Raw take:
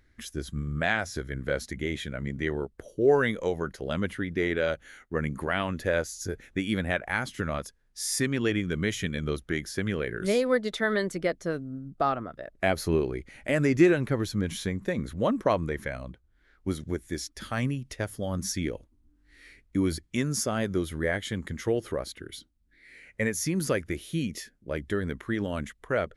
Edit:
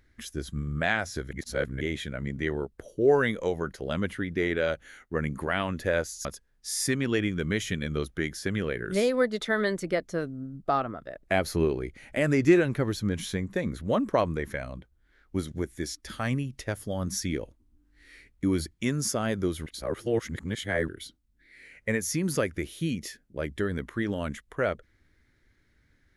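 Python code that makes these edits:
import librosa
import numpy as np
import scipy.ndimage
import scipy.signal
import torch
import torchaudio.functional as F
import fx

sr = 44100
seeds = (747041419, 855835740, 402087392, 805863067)

y = fx.edit(x, sr, fx.reverse_span(start_s=1.31, length_s=0.5),
    fx.cut(start_s=6.25, length_s=1.32),
    fx.reverse_span(start_s=20.98, length_s=1.22), tone=tone)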